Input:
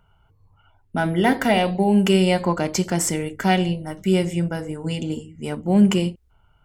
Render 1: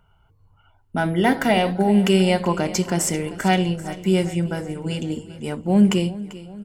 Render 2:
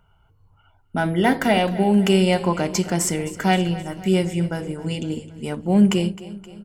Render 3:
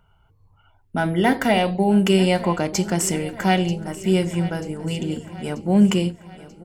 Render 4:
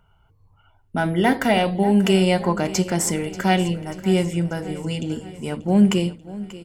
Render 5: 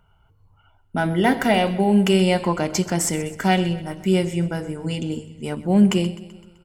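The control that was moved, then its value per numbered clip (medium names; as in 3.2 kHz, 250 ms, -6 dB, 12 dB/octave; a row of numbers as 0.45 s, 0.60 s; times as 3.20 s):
feedback delay, time: 392 ms, 262 ms, 937 ms, 587 ms, 128 ms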